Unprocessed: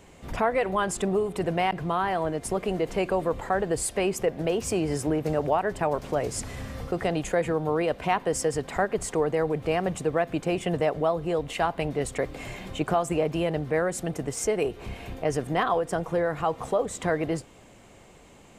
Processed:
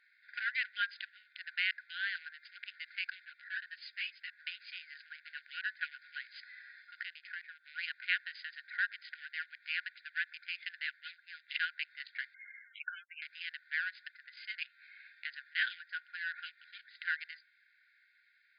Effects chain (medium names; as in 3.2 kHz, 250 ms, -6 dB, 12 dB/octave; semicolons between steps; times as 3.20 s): local Wiener filter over 15 samples; 6.99–7.64 s: compression 12:1, threshold -29 dBFS, peak gain reduction 10.5 dB; 12.34–13.22 s: loudest bins only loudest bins 64; brick-wall FIR band-pass 1.4–5 kHz; 3.25–4.33 s: three-phase chorus; trim +2 dB